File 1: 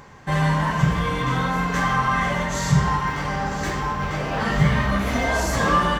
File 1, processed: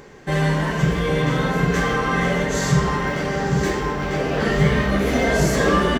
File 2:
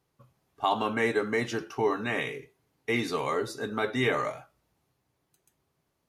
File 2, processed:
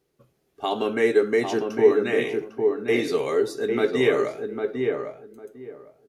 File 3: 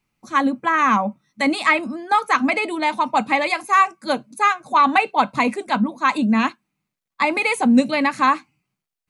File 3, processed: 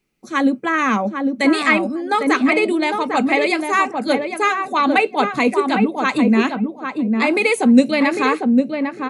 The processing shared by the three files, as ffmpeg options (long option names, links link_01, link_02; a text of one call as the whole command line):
ffmpeg -i in.wav -filter_complex "[0:a]equalizer=frequency=100:width_type=o:width=0.67:gain=-9,equalizer=frequency=400:width_type=o:width=0.67:gain=9,equalizer=frequency=1000:width_type=o:width=0.67:gain=-8,asplit=2[link_01][link_02];[link_02]adelay=802,lowpass=frequency=1200:poles=1,volume=-3.5dB,asplit=2[link_03][link_04];[link_04]adelay=802,lowpass=frequency=1200:poles=1,volume=0.2,asplit=2[link_05][link_06];[link_06]adelay=802,lowpass=frequency=1200:poles=1,volume=0.2[link_07];[link_01][link_03][link_05][link_07]amix=inputs=4:normalize=0,volume=2dB" out.wav